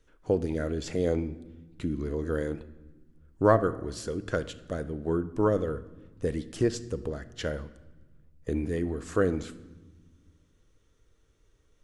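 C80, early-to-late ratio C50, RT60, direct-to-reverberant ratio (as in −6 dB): 17.5 dB, 15.0 dB, 1.2 s, 11.5 dB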